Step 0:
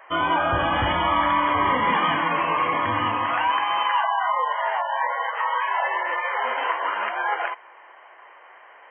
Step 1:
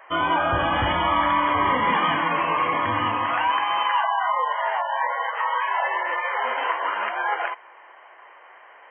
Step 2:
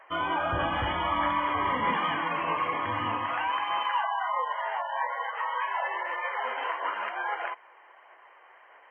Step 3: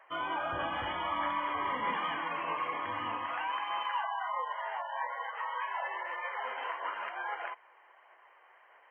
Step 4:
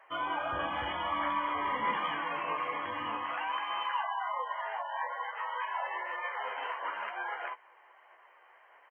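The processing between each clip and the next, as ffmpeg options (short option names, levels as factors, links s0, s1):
-af anull
-af "aphaser=in_gain=1:out_gain=1:delay=2.6:decay=0.22:speed=1.6:type=sinusoidal,volume=0.447"
-af "lowshelf=f=170:g=-11,volume=0.531"
-filter_complex "[0:a]asplit=2[s0][s1];[s1]adelay=14,volume=0.422[s2];[s0][s2]amix=inputs=2:normalize=0"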